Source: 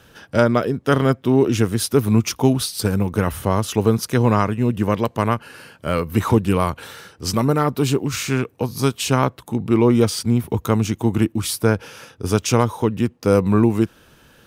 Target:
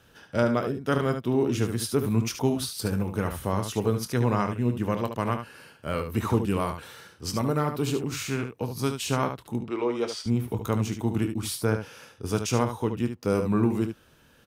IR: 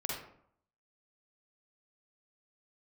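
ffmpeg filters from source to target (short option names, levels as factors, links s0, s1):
-filter_complex "[0:a]asettb=1/sr,asplit=3[s0][s1][s2];[s0]atrim=end=9.634[s3];[s1]atrim=start=9.63:end=10.26,asetpts=PTS-STARTPTS,afade=t=in:d=0.004:c=qsin,afade=t=out:st=0.626:d=0.004:c=qsin,acrossover=split=330 6700:gain=0.0794 1 0.158[s4][s5][s6];[s4][s5][s6]amix=inputs=3:normalize=0[s7];[s2]atrim=start=10.256[s8];[s3][s7]acrossfade=d=0.004:c1=hsin:c2=qsin[s9];[s9][s8]acrossfade=d=0.004:c1=qsin:c2=hsin,aecho=1:1:25|73:0.237|0.398,volume=0.376"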